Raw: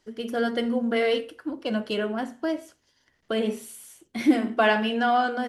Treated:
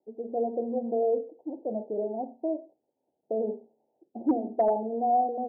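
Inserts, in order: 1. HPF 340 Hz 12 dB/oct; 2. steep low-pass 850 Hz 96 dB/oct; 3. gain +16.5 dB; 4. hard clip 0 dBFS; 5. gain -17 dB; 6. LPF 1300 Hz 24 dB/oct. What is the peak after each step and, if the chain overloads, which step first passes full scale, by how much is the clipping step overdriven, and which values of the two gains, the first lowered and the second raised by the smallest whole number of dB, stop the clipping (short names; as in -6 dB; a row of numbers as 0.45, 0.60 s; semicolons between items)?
-8.5, -12.0, +4.5, 0.0, -17.0, -16.0 dBFS; step 3, 4.5 dB; step 3 +11.5 dB, step 5 -12 dB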